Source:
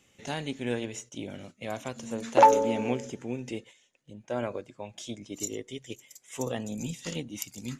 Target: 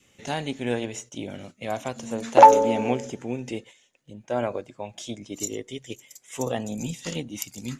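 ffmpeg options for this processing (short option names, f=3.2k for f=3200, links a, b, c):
-af "adynamicequalizer=threshold=0.00708:dfrequency=740:dqfactor=2.2:tfrequency=740:tqfactor=2.2:attack=5:release=100:ratio=0.375:range=2.5:mode=boostabove:tftype=bell,volume=3.5dB"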